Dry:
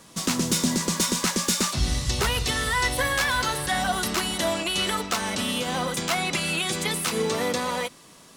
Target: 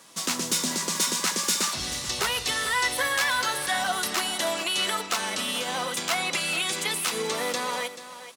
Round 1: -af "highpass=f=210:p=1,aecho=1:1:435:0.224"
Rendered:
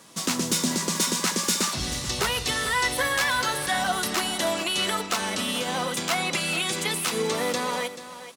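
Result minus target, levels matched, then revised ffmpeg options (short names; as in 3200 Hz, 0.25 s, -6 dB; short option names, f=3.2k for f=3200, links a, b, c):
250 Hz band +5.5 dB
-af "highpass=f=600:p=1,aecho=1:1:435:0.224"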